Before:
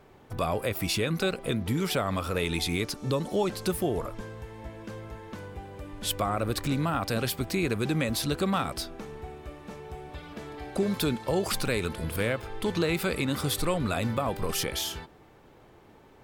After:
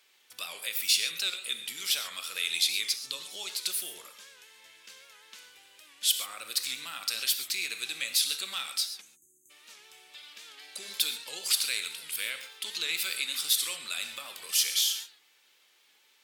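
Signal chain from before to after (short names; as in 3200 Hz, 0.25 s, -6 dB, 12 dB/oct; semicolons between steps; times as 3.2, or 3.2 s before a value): weighting filter D; spectral delete 9.01–9.5, 370–6200 Hz; differentiator; notch 700 Hz, Q 14; non-linear reverb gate 0.16 s flat, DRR 7 dB; record warp 78 rpm, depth 100 cents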